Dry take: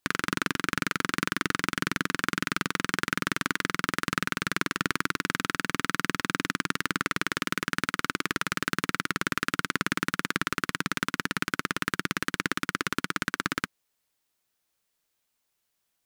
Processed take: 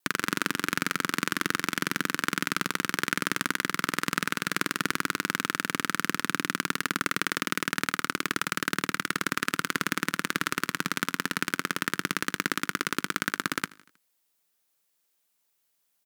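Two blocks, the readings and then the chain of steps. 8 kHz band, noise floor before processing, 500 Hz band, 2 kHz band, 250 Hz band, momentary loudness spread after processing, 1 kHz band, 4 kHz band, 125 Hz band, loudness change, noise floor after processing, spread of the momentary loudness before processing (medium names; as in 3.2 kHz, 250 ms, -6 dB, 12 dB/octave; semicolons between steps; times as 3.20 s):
+3.0 dB, -79 dBFS, 0.0 dB, 0.0 dB, -0.5 dB, 1 LU, 0.0 dB, +1.0 dB, -2.5 dB, +0.5 dB, -74 dBFS, 1 LU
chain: high-pass 140 Hz 12 dB/octave; treble shelf 9.4 kHz +7.5 dB; vibrato 0.71 Hz 12 cents; on a send: feedback delay 79 ms, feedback 57%, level -22.5 dB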